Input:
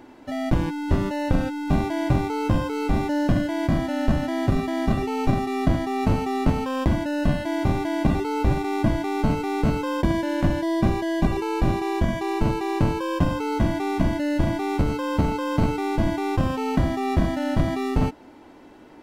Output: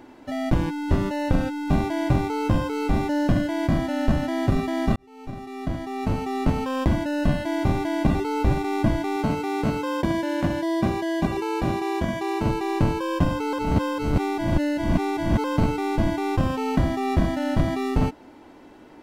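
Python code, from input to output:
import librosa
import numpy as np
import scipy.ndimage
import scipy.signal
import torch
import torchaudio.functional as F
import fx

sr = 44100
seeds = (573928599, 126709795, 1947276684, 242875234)

y = fx.highpass(x, sr, hz=140.0, slope=6, at=(9.16, 12.46))
y = fx.edit(y, sr, fx.fade_in_span(start_s=4.96, length_s=1.74),
    fx.reverse_span(start_s=13.53, length_s=1.91), tone=tone)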